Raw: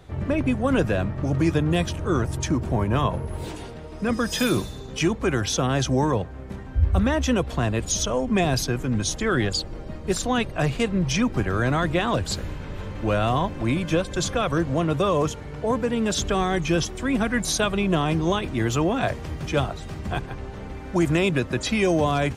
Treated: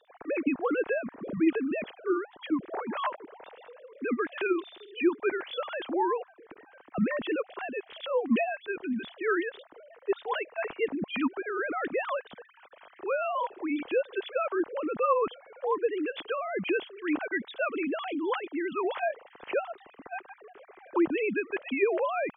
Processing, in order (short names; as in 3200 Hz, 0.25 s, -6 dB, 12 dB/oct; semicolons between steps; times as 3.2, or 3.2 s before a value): sine-wave speech; gain -7.5 dB